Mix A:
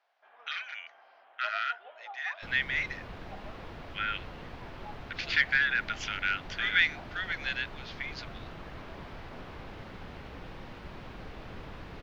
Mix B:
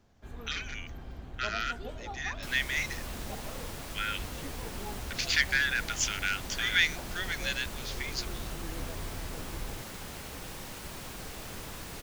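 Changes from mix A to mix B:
speech -4.5 dB; first sound: remove Chebyshev band-pass 660–3200 Hz, order 3; master: remove air absorption 320 m

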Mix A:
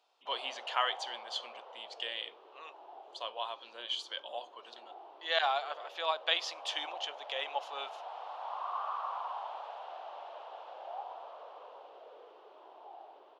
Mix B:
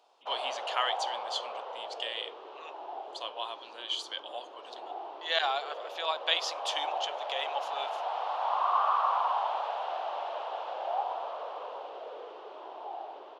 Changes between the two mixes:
speech: add high shelf 5000 Hz +9 dB; background +10.5 dB

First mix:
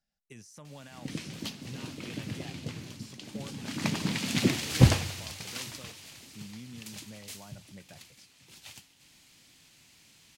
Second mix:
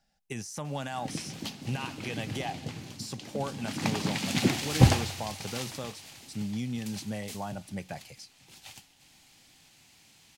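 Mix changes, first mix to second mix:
speech +12.0 dB; master: add bell 790 Hz +8 dB 0.3 oct

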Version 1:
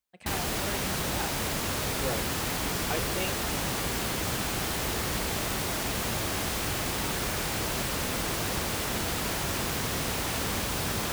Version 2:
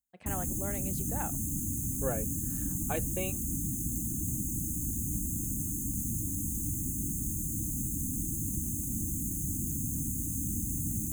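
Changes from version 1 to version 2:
speech: add high shelf 2400 Hz -10.5 dB; background: add brick-wall FIR band-stop 330–6200 Hz

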